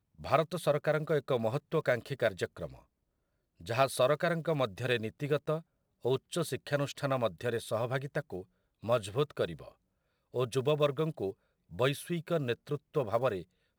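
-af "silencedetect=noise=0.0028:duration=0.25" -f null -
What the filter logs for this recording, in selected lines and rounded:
silence_start: 2.82
silence_end: 3.60 | silence_duration: 0.78
silence_start: 5.61
silence_end: 6.04 | silence_duration: 0.43
silence_start: 8.43
silence_end: 8.83 | silence_duration: 0.40
silence_start: 9.72
silence_end: 10.34 | silence_duration: 0.62
silence_start: 11.33
silence_end: 11.71 | silence_duration: 0.38
silence_start: 13.43
silence_end: 13.78 | silence_duration: 0.35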